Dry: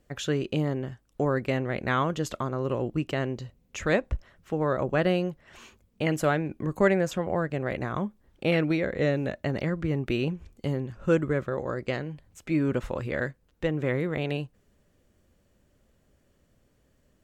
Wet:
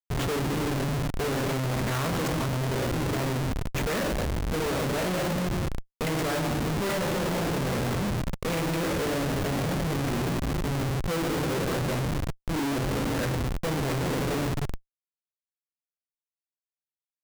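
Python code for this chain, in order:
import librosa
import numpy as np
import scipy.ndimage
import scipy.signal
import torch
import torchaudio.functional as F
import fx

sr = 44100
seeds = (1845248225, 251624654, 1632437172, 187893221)

y = x * (1.0 - 0.36 / 2.0 + 0.36 / 2.0 * np.cos(2.0 * np.pi * 1.8 * (np.arange(len(x)) / sr)))
y = fx.room_shoebox(y, sr, seeds[0], volume_m3=1100.0, walls='mixed', distance_m=1.6)
y = fx.schmitt(y, sr, flips_db=-33.0)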